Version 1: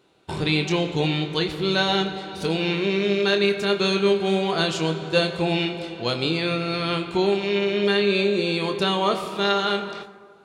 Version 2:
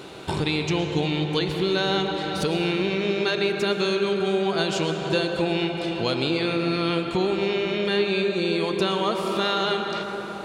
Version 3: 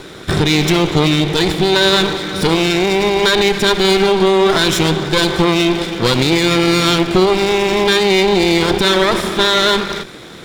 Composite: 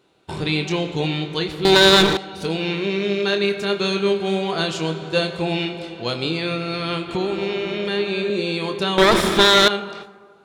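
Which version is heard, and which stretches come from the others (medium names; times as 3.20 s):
1
1.65–2.17 s: from 3
7.09–8.30 s: from 2
8.98–9.68 s: from 3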